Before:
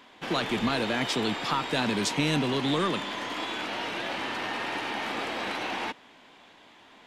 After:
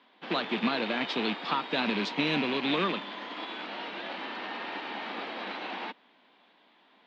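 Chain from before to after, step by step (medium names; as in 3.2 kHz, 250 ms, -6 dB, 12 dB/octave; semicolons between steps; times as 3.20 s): rattle on loud lows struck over -33 dBFS, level -21 dBFS; Chebyshev band-pass 190–4200 Hz, order 3; upward expansion 1.5:1, over -40 dBFS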